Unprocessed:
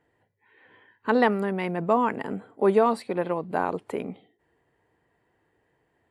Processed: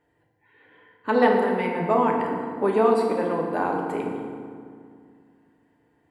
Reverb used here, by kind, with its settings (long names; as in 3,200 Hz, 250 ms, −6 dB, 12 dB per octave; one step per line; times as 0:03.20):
feedback delay network reverb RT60 2.1 s, low-frequency decay 1.4×, high-frequency decay 0.6×, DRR −0.5 dB
level −1.5 dB